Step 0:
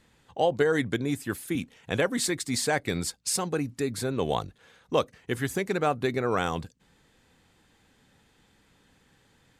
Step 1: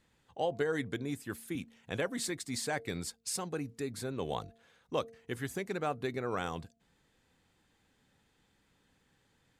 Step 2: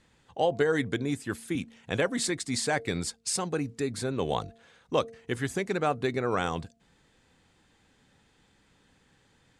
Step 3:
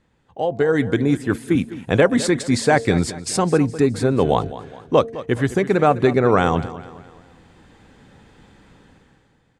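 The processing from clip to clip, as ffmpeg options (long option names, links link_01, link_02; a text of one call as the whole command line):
ffmpeg -i in.wav -af "bandreject=frequency=228:width_type=h:width=4,bandreject=frequency=456:width_type=h:width=4,bandreject=frequency=684:width_type=h:width=4,volume=-8.5dB" out.wav
ffmpeg -i in.wav -af "lowpass=frequency=10000:width=0.5412,lowpass=frequency=10000:width=1.3066,volume=7dB" out.wav
ffmpeg -i in.wav -af "dynaudnorm=framelen=130:gausssize=11:maxgain=15dB,highshelf=frequency=2100:gain=-11,aecho=1:1:208|416|624|832:0.168|0.0755|0.034|0.0153,volume=2dB" out.wav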